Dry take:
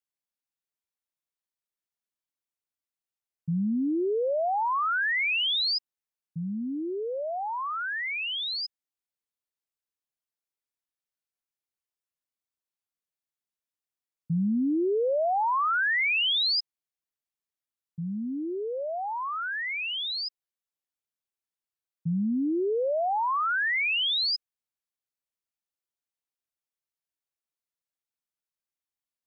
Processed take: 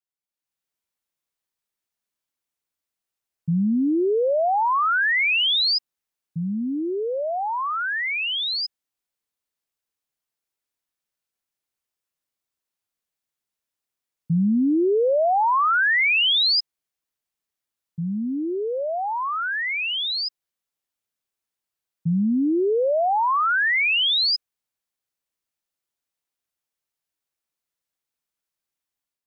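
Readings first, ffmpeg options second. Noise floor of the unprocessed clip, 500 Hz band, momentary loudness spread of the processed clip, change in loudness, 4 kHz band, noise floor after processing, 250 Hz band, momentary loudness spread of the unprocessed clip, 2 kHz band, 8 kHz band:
under -85 dBFS, +6.0 dB, 9 LU, +6.0 dB, +6.0 dB, under -85 dBFS, +6.0 dB, 9 LU, +6.0 dB, n/a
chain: -af "dynaudnorm=f=170:g=5:m=10dB,volume=-4dB"

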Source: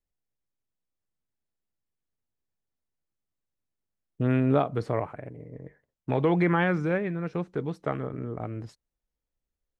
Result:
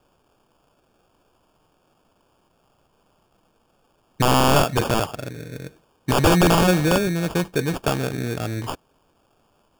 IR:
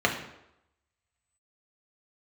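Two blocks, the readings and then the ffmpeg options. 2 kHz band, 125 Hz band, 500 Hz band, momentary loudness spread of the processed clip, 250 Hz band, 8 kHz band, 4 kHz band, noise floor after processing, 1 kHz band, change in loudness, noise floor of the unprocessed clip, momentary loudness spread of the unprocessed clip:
+7.5 dB, +6.5 dB, +6.5 dB, 18 LU, +6.0 dB, n/a, +22.0 dB, -65 dBFS, +10.5 dB, +7.0 dB, under -85 dBFS, 19 LU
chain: -af "aexciter=amount=11.4:drive=6:freq=3.9k,acrusher=samples=22:mix=1:aa=0.000001,aeval=exprs='(mod(7.08*val(0)+1,2)-1)/7.08':c=same,volume=8dB"

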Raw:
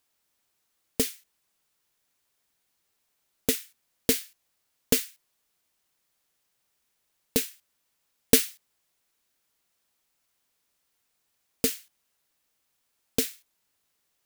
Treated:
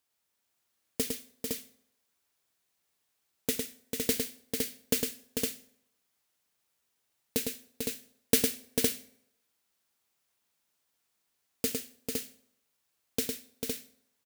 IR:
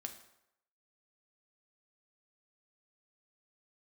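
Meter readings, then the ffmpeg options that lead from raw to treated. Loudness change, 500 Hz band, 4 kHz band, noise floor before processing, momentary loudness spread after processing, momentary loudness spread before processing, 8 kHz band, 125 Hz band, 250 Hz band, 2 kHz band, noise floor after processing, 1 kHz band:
-5.5 dB, -2.5 dB, -2.5 dB, -76 dBFS, 9 LU, 14 LU, -2.5 dB, -3.0 dB, -2.5 dB, -2.5 dB, -79 dBFS, -2.5 dB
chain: -filter_complex "[0:a]highpass=51,aecho=1:1:106|445|511:0.562|0.501|0.631,asplit=2[a][b];[1:a]atrim=start_sample=2205[c];[b][c]afir=irnorm=-1:irlink=0,volume=-4dB[d];[a][d]amix=inputs=2:normalize=0,volume=-8.5dB"

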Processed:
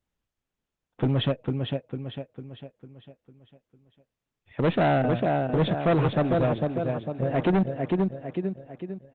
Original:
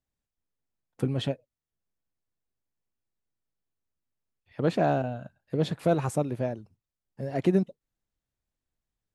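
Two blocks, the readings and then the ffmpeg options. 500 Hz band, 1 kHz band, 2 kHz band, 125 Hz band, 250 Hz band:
+4.0 dB, +5.5 dB, +7.0 dB, +5.5 dB, +4.5 dB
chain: -af "aecho=1:1:451|902|1353|1804|2255|2706:0.501|0.236|0.111|0.052|0.0245|0.0115,aresample=8000,asoftclip=type=hard:threshold=-24.5dB,aresample=44100,acontrast=61" -ar 48000 -c:a libopus -b:a 20k

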